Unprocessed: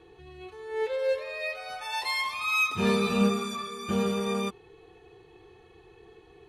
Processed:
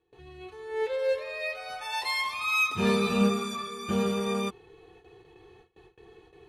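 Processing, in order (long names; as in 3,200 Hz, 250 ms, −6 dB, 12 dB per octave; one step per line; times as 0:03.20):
noise gate with hold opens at −45 dBFS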